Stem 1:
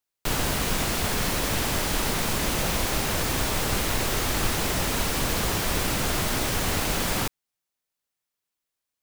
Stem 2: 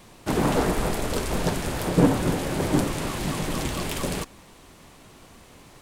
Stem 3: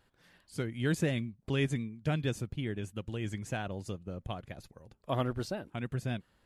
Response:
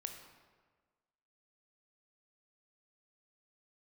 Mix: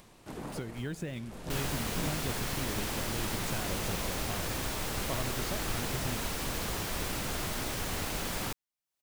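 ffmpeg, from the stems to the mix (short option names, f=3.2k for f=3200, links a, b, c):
-filter_complex "[0:a]adelay=1250,volume=-9dB[a];[1:a]volume=-20dB,asplit=2[b][c];[c]volume=-9dB[d];[2:a]acrusher=bits=7:mix=0:aa=0.5,volume=1.5dB,asplit=3[e][f][g];[f]volume=-20.5dB[h];[g]apad=whole_len=256233[i];[b][i]sidechaincompress=threshold=-33dB:ratio=8:attack=16:release=249[j];[j][e]amix=inputs=2:normalize=0,acompressor=threshold=-36dB:ratio=6,volume=0dB[k];[3:a]atrim=start_sample=2205[l];[d][h]amix=inputs=2:normalize=0[m];[m][l]afir=irnorm=-1:irlink=0[n];[a][k][n]amix=inputs=3:normalize=0,acompressor=mode=upward:threshold=-47dB:ratio=2.5"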